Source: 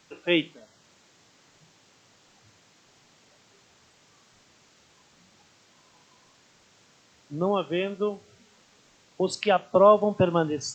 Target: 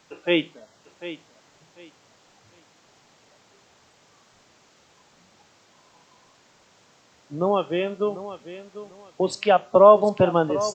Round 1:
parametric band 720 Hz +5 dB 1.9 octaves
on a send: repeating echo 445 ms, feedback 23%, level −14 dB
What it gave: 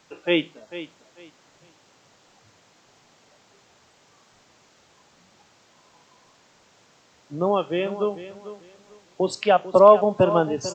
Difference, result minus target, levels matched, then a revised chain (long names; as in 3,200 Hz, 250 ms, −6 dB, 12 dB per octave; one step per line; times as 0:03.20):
echo 300 ms early
parametric band 720 Hz +5 dB 1.9 octaves
on a send: repeating echo 745 ms, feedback 23%, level −14 dB